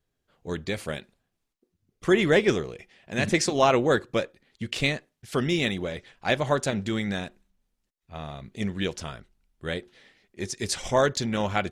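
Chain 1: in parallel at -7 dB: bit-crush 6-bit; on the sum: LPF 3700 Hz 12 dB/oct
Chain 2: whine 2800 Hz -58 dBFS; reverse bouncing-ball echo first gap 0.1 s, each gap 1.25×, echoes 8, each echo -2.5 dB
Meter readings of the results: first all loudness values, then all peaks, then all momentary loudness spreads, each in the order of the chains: -23.5, -23.5 LUFS; -3.5, -6.5 dBFS; 18, 17 LU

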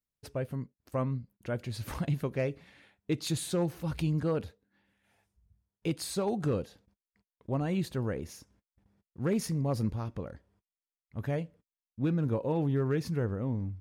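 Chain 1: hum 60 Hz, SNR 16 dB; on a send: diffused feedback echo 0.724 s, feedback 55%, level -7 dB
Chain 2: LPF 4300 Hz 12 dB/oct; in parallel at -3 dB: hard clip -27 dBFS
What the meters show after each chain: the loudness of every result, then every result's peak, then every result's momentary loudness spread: -33.5, -29.0 LUFS; -17.5, -16.0 dBFS; 10, 11 LU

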